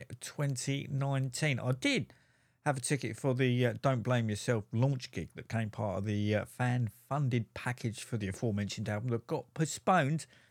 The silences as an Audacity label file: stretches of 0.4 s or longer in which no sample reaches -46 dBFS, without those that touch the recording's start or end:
2.100000	2.660000	silence